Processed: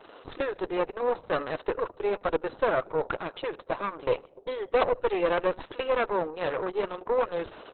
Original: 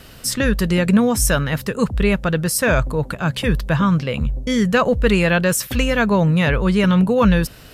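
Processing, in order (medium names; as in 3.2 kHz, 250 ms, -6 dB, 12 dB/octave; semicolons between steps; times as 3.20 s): high-order bell 2.6 kHz -12 dB; reverse; compression 20:1, threshold -24 dBFS, peak gain reduction 15.5 dB; reverse; brick-wall FIR band-pass 290–6600 Hz; on a send: feedback delay 76 ms, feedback 41%, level -22 dB; on the sum: Chebyshev shaper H 4 -16 dB, 5 -26 dB, 7 -24 dB, 8 -37 dB, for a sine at -18.5 dBFS; trim +5.5 dB; Opus 6 kbps 48 kHz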